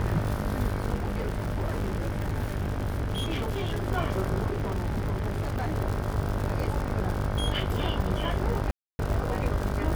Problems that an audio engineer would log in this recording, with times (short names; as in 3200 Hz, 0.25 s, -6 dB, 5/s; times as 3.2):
buzz 50 Hz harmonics 32 -32 dBFS
crackle 140/s -30 dBFS
0.94–3.87 clipped -25 dBFS
4.5–5.75 clipped -25 dBFS
8.71–8.99 gap 0.28 s